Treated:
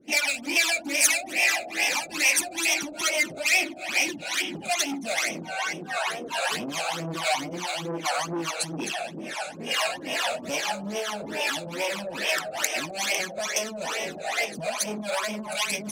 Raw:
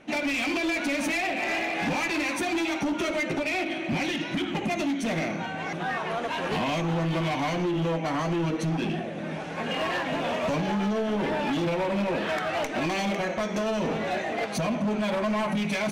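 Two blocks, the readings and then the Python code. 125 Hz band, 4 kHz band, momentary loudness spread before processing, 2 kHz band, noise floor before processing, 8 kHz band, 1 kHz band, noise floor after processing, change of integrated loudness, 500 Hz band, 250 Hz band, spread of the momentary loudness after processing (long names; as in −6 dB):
−11.0 dB, +6.5 dB, 3 LU, +4.0 dB, −34 dBFS, +14.5 dB, −1.5 dB, −40 dBFS, +1.5 dB, −3.5 dB, −8.5 dB, 9 LU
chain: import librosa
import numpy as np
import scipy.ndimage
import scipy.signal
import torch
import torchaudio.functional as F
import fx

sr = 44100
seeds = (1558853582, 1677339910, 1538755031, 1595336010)

y = fx.highpass(x, sr, hz=120.0, slope=6)
y = fx.high_shelf(y, sr, hz=4700.0, db=6.5)
y = y + 10.0 ** (-9.5 / 20.0) * np.pad(y, (int(254 * sr / 1000.0), 0))[:len(y)]
y = fx.harmonic_tremolo(y, sr, hz=2.4, depth_pct=100, crossover_hz=480.0)
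y = fx.phaser_stages(y, sr, stages=12, low_hz=310.0, high_hz=1400.0, hz=2.3, feedback_pct=30)
y = fx.bass_treble(y, sr, bass_db=-14, treble_db=10)
y = fx.transformer_sat(y, sr, knee_hz=3700.0)
y = F.gain(torch.from_numpy(y), 8.0).numpy()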